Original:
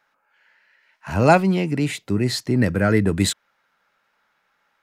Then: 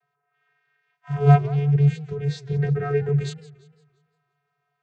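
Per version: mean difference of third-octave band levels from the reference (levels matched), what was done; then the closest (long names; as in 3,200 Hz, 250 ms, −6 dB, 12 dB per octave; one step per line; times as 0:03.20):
11.5 dB: channel vocoder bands 16, square 143 Hz
feedback echo with a swinging delay time 172 ms, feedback 42%, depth 204 cents, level −18 dB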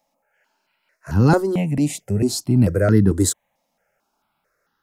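5.5 dB: flat-topped bell 2,000 Hz −9.5 dB 2.5 octaves
step-sequenced phaser 4.5 Hz 400–2,300 Hz
level +6 dB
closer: second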